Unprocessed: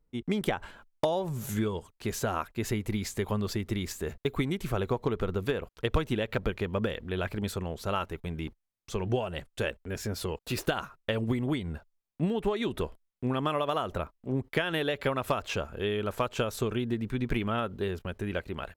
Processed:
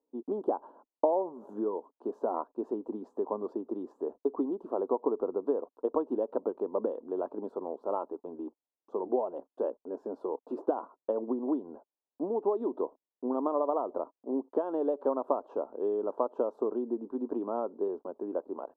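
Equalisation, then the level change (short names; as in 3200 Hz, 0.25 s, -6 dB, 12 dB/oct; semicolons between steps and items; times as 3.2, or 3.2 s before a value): elliptic band-pass 270–1000 Hz, stop band 40 dB; +2.0 dB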